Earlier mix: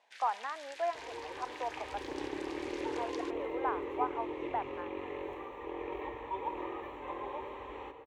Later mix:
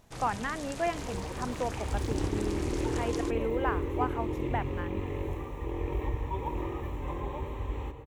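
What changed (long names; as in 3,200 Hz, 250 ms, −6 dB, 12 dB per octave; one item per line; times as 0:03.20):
speech: remove resonant band-pass 870 Hz, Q 1.7
first sound: remove Butterworth high-pass 1,500 Hz 72 dB per octave
master: remove three-way crossover with the lows and the highs turned down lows −24 dB, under 340 Hz, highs −16 dB, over 4,300 Hz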